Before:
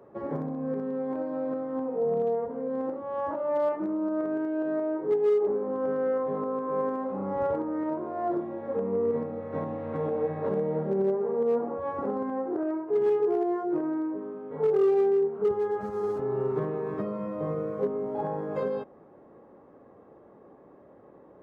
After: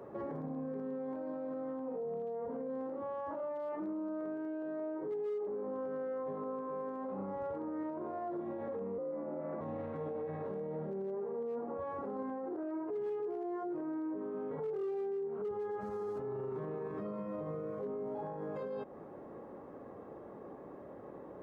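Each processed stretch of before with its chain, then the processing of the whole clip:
8.98–9.61 s: low-pass 1.6 kHz + frequency shift +61 Hz
whole clip: compression 3:1, threshold -37 dBFS; peak limiter -37 dBFS; trim +4 dB

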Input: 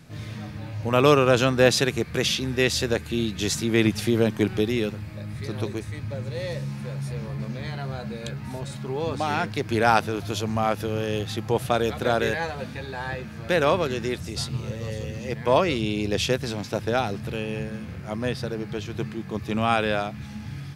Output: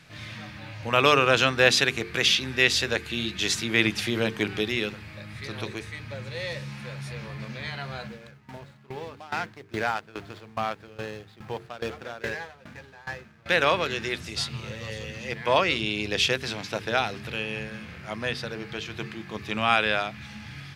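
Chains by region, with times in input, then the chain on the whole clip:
8.07–13.46 s: median filter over 15 samples + modulation noise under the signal 34 dB + sawtooth tremolo in dB decaying 2.4 Hz, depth 19 dB
whole clip: peaking EQ 2.5 kHz +12 dB 2.8 oct; hum notches 50/100/150/200/250/300/350/400/450 Hz; trim -6.5 dB

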